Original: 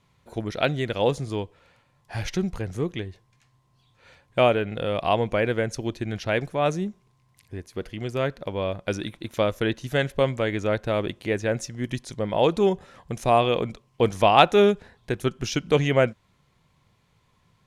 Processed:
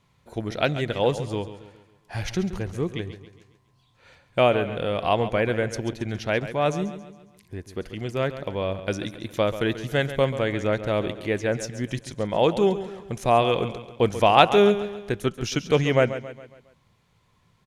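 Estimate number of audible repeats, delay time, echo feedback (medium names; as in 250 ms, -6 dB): 4, 137 ms, 46%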